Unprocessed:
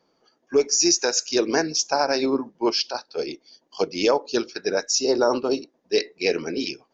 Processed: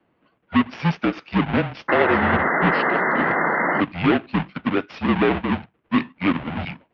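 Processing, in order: square wave that keeps the level; painted sound noise, 1.88–3.81 s, 320–2300 Hz -19 dBFS; mistuned SSB -180 Hz 320–3200 Hz; trim -1.5 dB

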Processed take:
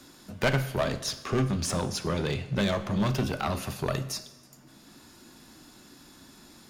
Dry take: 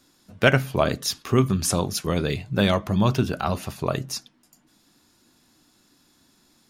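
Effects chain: 0.81–3.09 s: low-pass 8.5 kHz 12 dB/octave; one-sided clip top -22.5 dBFS; two-slope reverb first 0.79 s, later 2.2 s, from -22 dB, DRR 10.5 dB; three bands compressed up and down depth 40%; trim -2.5 dB

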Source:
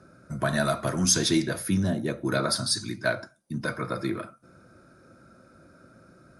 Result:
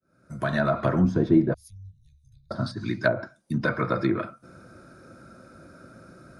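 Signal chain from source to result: fade-in on the opening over 0.95 s; low-pass that closes with the level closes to 710 Hz, closed at -21.5 dBFS; 1.54–2.51 s: inverse Chebyshev band-stop 280–1300 Hz, stop band 80 dB; trim +5.5 dB

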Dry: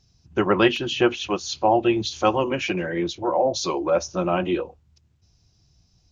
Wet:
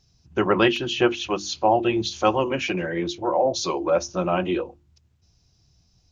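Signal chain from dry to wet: hum notches 50/100/150/200/250/300/350 Hz

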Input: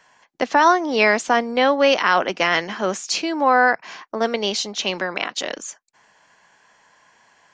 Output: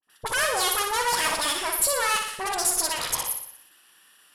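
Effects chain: gate with hold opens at -46 dBFS; de-hum 76.36 Hz, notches 31; valve stage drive 23 dB, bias 0.75; resonant low-pass 6.2 kHz, resonance Q 4.4; phase dispersion highs, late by 53 ms, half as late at 710 Hz; speed mistake 45 rpm record played at 78 rpm; flutter echo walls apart 10.3 m, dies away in 0.67 s

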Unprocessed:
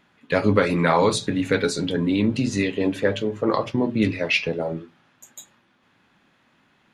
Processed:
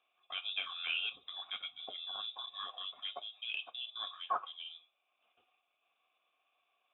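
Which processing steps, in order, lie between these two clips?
frequency inversion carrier 3.7 kHz; vowel filter a; transient shaper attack -1 dB, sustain -5 dB; trim -3 dB

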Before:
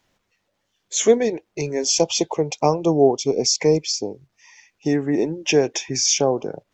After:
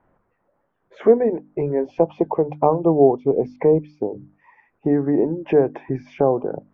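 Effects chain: low-pass 1.4 kHz 24 dB/octave; hum notches 50/100/150/200/250/300 Hz; in parallel at +2.5 dB: compression, threshold -31 dBFS, peak gain reduction 20 dB

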